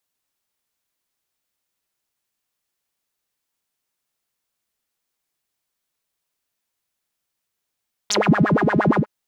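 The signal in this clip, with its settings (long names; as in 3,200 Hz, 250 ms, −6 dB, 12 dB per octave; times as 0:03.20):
subtractive patch with filter wobble G#3, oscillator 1 saw, filter bandpass, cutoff 430 Hz, Q 11, filter envelope 2.5 octaves, filter decay 0.18 s, filter sustain 10%, attack 12 ms, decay 0.07 s, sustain −9 dB, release 0.09 s, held 0.87 s, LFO 8.6 Hz, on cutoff 1.8 octaves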